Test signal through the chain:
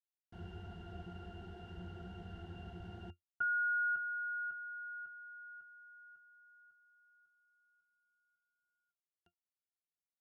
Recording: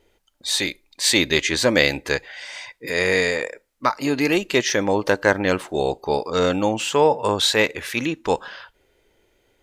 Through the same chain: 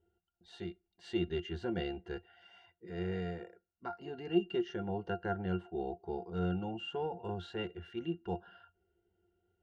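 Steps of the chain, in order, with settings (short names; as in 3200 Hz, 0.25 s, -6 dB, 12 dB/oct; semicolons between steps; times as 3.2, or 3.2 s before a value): high shelf 9100 Hz -7.5 dB; octave resonator F, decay 0.11 s; gain -4.5 dB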